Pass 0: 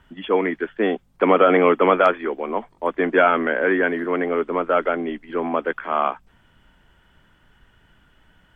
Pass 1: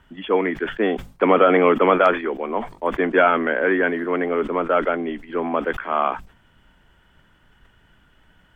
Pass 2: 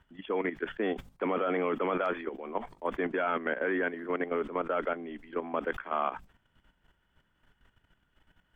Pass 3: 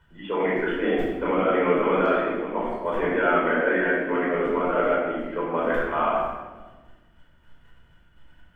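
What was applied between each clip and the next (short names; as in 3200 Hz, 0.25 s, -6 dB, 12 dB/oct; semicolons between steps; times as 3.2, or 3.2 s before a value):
sustainer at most 140 dB/s
level quantiser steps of 11 dB; gain -7 dB
shoebox room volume 860 m³, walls mixed, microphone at 4.8 m; gain -1.5 dB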